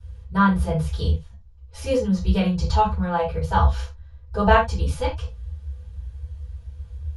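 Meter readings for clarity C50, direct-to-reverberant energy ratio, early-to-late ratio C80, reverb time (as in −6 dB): 6.5 dB, −18.0 dB, 13.5 dB, non-exponential decay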